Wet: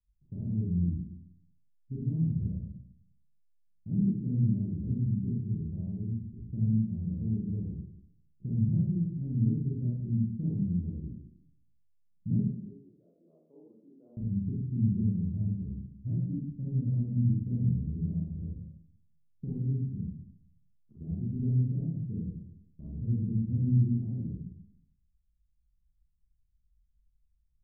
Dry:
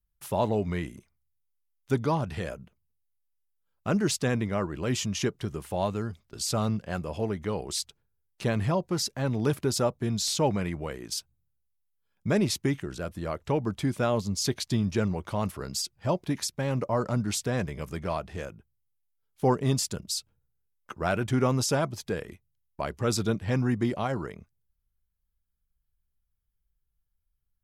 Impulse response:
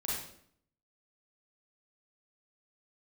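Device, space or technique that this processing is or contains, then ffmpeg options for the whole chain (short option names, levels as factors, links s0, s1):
club heard from the street: -filter_complex "[0:a]asettb=1/sr,asplit=3[s0][s1][s2];[s0]atrim=end=12.394[s3];[s1]atrim=start=12.39:end=14.17,asetpts=PTS-STARTPTS,afade=t=in:d=0.004:c=qsin,afade=t=out:st=1.776:d=0.004:c=qsin,highpass=f=500:w=0.5412,highpass=f=500:w=1.3066[s4];[s2]atrim=start=14.166[s5];[s3][s4]acrossfade=d=0.004:c1=hsin:c2=qsin[s6];[s6][s5]acrossfade=d=0.004:c1=qsin:c2=hsin,alimiter=limit=0.106:level=0:latency=1:release=464,lowpass=f=220:w=0.5412,lowpass=f=220:w=1.3066[s7];[1:a]atrim=start_sample=2205[s8];[s7][s8]afir=irnorm=-1:irlink=0"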